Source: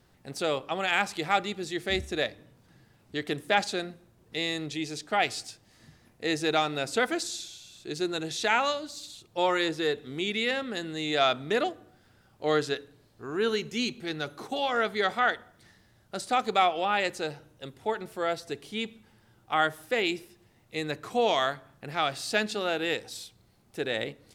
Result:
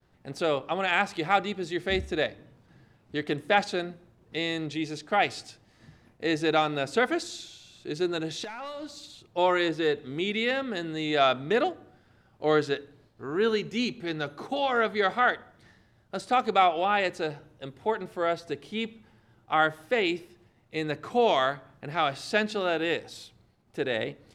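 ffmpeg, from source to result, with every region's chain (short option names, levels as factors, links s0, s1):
-filter_complex "[0:a]asettb=1/sr,asplit=3[s0][s1][s2];[s0]atrim=end=8.444[s3];[s1]atrim=start=8.44:end=8.93,asetpts=PTS-STARTPTS,afade=t=in:d=0.004:c=qsin,afade=t=out:st=0.486:d=0.004:c=qsin,acompressor=threshold=0.02:ratio=8:attack=3.2:release=140:knee=1:detection=peak,volume=56.2,asoftclip=hard,volume=0.0178[s4];[s2]atrim=start=8.926[s5];[s3][s4]acrossfade=d=0.004:c1=hsin:c2=qsin[s6];[s6][s5]acrossfade=d=0.004:c1=qsin:c2=hsin,lowpass=f=2800:p=1,agate=range=0.0224:threshold=0.00112:ratio=3:detection=peak,volume=1.33"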